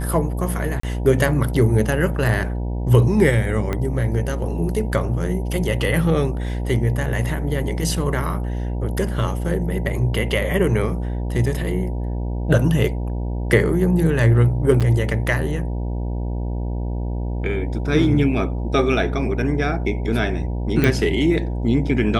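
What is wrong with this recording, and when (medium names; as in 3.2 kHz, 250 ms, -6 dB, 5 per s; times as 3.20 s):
buzz 60 Hz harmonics 16 -24 dBFS
0.80–0.83 s: dropout 34 ms
3.73 s: pop -11 dBFS
14.80–14.81 s: dropout 7.3 ms
20.84 s: pop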